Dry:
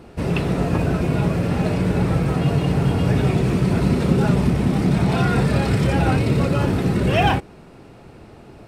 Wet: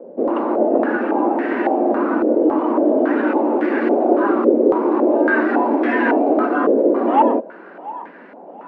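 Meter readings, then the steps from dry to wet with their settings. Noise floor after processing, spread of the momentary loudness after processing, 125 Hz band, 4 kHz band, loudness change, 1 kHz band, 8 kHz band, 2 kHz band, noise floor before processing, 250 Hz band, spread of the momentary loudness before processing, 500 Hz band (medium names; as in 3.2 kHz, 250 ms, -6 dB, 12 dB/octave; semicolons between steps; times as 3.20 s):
-39 dBFS, 5 LU, under -25 dB, under -10 dB, +2.5 dB, +7.0 dB, under -30 dB, +5.0 dB, -44 dBFS, +3.0 dB, 3 LU, +8.0 dB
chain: thinning echo 699 ms, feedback 52%, high-pass 420 Hz, level -18.5 dB; frequency shift +170 Hz; step-sequenced low-pass 3.6 Hz 530–1800 Hz; trim -1 dB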